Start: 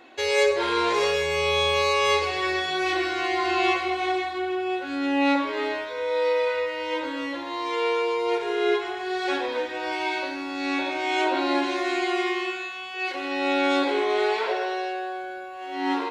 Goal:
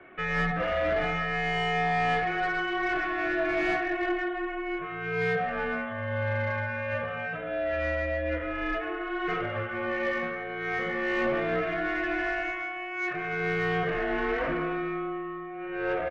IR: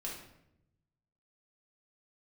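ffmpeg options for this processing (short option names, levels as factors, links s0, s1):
-filter_complex "[0:a]bandreject=f=1400:w=7.8,highpass=f=450:t=q:w=0.5412,highpass=f=450:t=q:w=1.307,lowpass=f=3000:t=q:w=0.5176,lowpass=f=3000:t=q:w=0.7071,lowpass=f=3000:t=q:w=1.932,afreqshift=-390,asplit=2[s0][s1];[s1]aecho=0:1:290:0.0891[s2];[s0][s2]amix=inputs=2:normalize=0,asplit=2[s3][s4];[s4]highpass=f=720:p=1,volume=7.94,asoftclip=type=tanh:threshold=0.299[s5];[s3][s5]amix=inputs=2:normalize=0,lowpass=f=1200:p=1,volume=0.501,volume=0.562"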